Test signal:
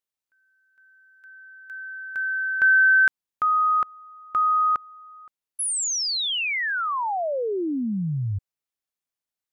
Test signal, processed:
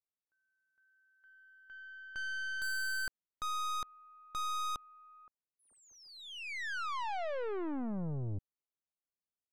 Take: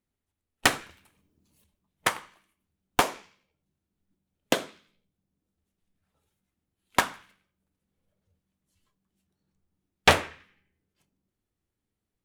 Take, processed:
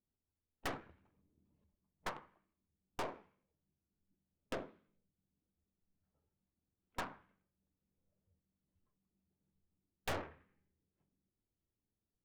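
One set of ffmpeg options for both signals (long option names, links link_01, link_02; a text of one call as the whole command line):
ffmpeg -i in.wav -af "adynamicsmooth=sensitivity=0.5:basefreq=1100,aeval=exprs='(tanh(44.7*val(0)+0.6)-tanh(0.6))/44.7':channel_layout=same,volume=-3dB" out.wav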